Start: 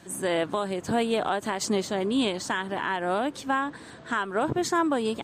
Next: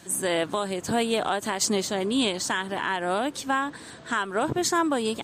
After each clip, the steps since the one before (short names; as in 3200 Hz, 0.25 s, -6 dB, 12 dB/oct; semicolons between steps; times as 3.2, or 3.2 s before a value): high shelf 3500 Hz +8.5 dB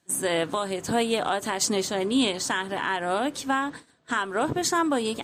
gate -39 dBFS, range -21 dB; on a send at -13 dB: reverb RT60 0.25 s, pre-delay 3 ms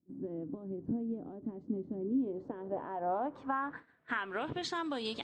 compressor, threshold -25 dBFS, peak gain reduction 6.5 dB; low-pass sweep 280 Hz -> 4200 Hz, 1.99–4.83; gain -8.5 dB